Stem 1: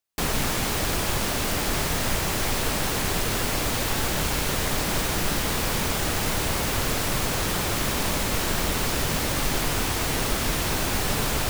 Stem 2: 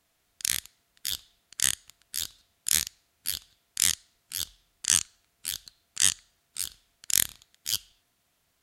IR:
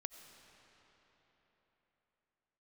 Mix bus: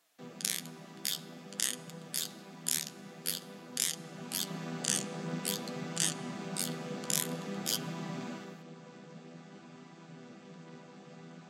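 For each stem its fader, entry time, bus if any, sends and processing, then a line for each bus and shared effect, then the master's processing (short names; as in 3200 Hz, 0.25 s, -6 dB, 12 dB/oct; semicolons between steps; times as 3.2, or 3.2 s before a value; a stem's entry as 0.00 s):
3.9 s -16.5 dB -> 4.59 s -7.5 dB -> 8.31 s -7.5 dB -> 8.63 s -19 dB, 0.00 s, no send, chord vocoder minor triad, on E3
+2.0 dB, 0.00 s, send -9.5 dB, HPF 320 Hz 12 dB/oct; compressor 3:1, threshold -29 dBFS, peak gain reduction 10.5 dB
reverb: on, RT60 4.3 s, pre-delay 50 ms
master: flange 0.5 Hz, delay 5.7 ms, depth 9.4 ms, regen +39%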